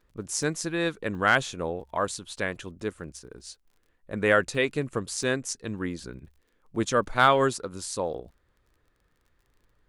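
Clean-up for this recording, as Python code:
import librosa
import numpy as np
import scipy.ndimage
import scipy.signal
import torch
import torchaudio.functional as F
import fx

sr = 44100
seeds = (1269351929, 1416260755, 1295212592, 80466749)

y = fx.fix_declip(x, sr, threshold_db=-8.5)
y = fx.fix_declick_ar(y, sr, threshold=6.5)
y = fx.fix_interpolate(y, sr, at_s=(0.43, 1.15, 3.16, 3.65, 4.55, 5.23), length_ms=1.3)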